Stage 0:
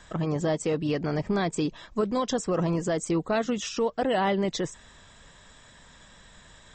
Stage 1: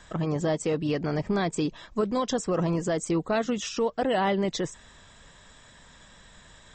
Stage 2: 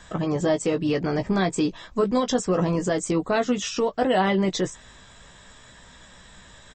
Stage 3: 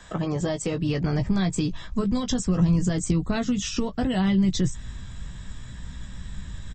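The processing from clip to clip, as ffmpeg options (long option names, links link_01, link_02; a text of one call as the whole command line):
ffmpeg -i in.wav -af anull out.wav
ffmpeg -i in.wav -filter_complex "[0:a]asplit=2[link_01][link_02];[link_02]adelay=16,volume=-6.5dB[link_03];[link_01][link_03]amix=inputs=2:normalize=0,volume=3dB" out.wav
ffmpeg -i in.wav -filter_complex "[0:a]asubboost=boost=9.5:cutoff=180,acrossover=split=140|3000[link_01][link_02][link_03];[link_02]acompressor=threshold=-24dB:ratio=6[link_04];[link_01][link_04][link_03]amix=inputs=3:normalize=0" out.wav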